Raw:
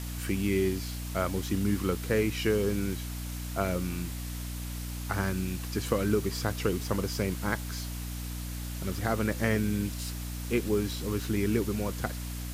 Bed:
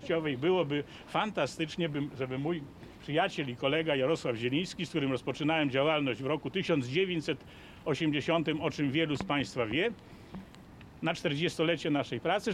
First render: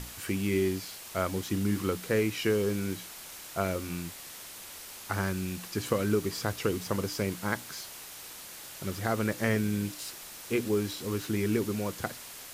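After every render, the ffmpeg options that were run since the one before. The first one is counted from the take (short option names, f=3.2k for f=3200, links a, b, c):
-af "bandreject=f=60:t=h:w=6,bandreject=f=120:t=h:w=6,bandreject=f=180:t=h:w=6,bandreject=f=240:t=h:w=6,bandreject=f=300:t=h:w=6"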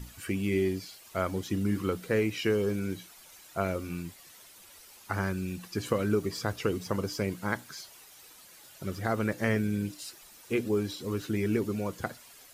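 -af "afftdn=nr=11:nf=-45"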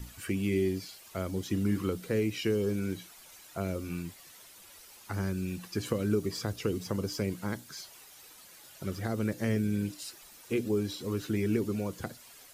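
-filter_complex "[0:a]acrossover=split=490|3000[a][b][c];[b]acompressor=threshold=-41dB:ratio=6[d];[a][d][c]amix=inputs=3:normalize=0"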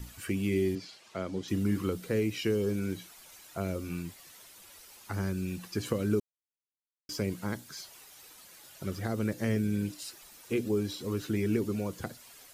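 -filter_complex "[0:a]asettb=1/sr,asplit=3[a][b][c];[a]atrim=end=0.754[d];[b]atrim=start=0.75:end=1.48,asetpts=PTS-STARTPTS,afade=t=in:d=0.004:c=qsin,afade=t=out:st=0.726:d=0.004:c=qsin,highpass=140,lowpass=5.4k[e];[c]atrim=start=1.476[f];[d][e]acrossfade=d=0.004:c1=hsin:c2=qsin[g];[g][f]acrossfade=d=0.004:c1=qsin:c2=hsin,asplit=3[h][i][j];[h]atrim=end=6.2,asetpts=PTS-STARTPTS,afade=t=out:st=6.196:d=0.004:c=hsin[k];[i]atrim=start=6.2:end=7.09,asetpts=PTS-STARTPTS,volume=0[l];[j]atrim=start=7.09,asetpts=PTS-STARTPTS,afade=t=in:d=0.004:c=hsin[m];[k][l][m]concat=n=3:v=0:a=1"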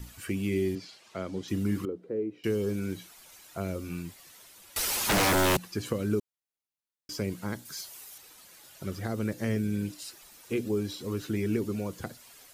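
-filter_complex "[0:a]asettb=1/sr,asplit=3[a][b][c];[a]atrim=end=1.854[d];[b]atrim=start=1.85:end=2.44,asetpts=PTS-STARTPTS,afade=t=in:d=0.004:c=qsin,afade=t=out:st=0.586:d=0.004:c=qsin,bandpass=f=380:t=q:w=1.9[e];[c]atrim=start=2.436[f];[d][e]acrossfade=d=0.004:c1=hsin:c2=qsin[g];[g][f]acrossfade=d=0.004:c1=qsin:c2=hsin,asettb=1/sr,asplit=3[h][i][j];[h]atrim=end=4.764[k];[i]atrim=start=4.76:end=5.57,asetpts=PTS-STARTPTS,afade=t=in:d=0.004:c=qsin,afade=t=out:st=0.806:d=0.004:c=qsin,aeval=exprs='0.0944*sin(PI/2*10*val(0)/0.0944)':c=same[l];[j]atrim=start=5.566[m];[k][l]acrossfade=d=0.004:c1=hsin:c2=qsin[n];[n][m]acrossfade=d=0.004:c1=qsin:c2=hsin,asettb=1/sr,asplit=3[o][p][q];[o]atrim=end=7.654[r];[p]atrim=start=7.65:end=8.18,asetpts=PTS-STARTPTS,afade=t=in:d=0.004:c=qsin,afade=t=out:st=0.526:d=0.004:c=qsin,highshelf=f=6.4k:g=9.5[s];[q]atrim=start=8.176[t];[r][s]acrossfade=d=0.004:c1=hsin:c2=qsin[u];[u][t]acrossfade=d=0.004:c1=qsin:c2=hsin"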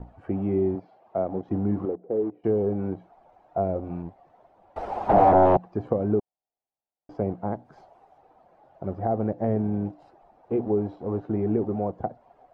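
-filter_complex "[0:a]asplit=2[a][b];[b]acrusher=bits=5:mix=0:aa=0.000001,volume=-9dB[c];[a][c]amix=inputs=2:normalize=0,lowpass=f=740:t=q:w=5.4"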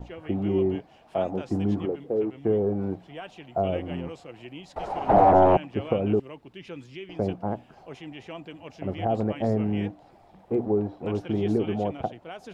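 -filter_complex "[1:a]volume=-11dB[a];[0:a][a]amix=inputs=2:normalize=0"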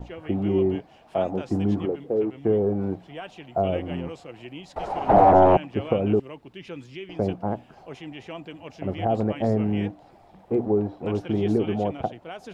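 -af "volume=2dB"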